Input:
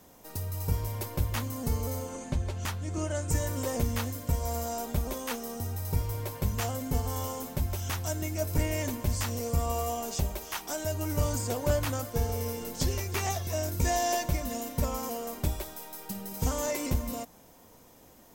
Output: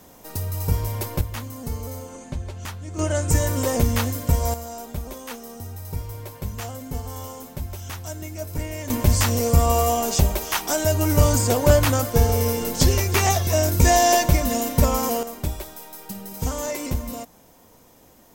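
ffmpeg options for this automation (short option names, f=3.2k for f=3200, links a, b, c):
-af "asetnsamples=n=441:p=0,asendcmd='1.21 volume volume 0dB;2.99 volume volume 9dB;4.54 volume volume -1dB;8.9 volume volume 11.5dB;15.23 volume volume 3dB',volume=7dB"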